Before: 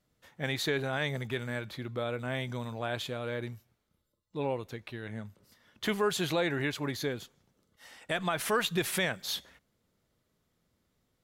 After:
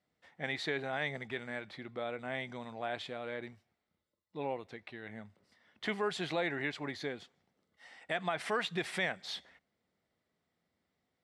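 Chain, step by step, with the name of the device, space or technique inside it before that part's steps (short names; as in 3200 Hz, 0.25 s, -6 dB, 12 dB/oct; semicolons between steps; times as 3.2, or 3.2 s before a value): car door speaker (speaker cabinet 88–8000 Hz, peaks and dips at 120 Hz -8 dB, 740 Hz +7 dB, 2000 Hz +7 dB, 6600 Hz -8 dB); gain -6 dB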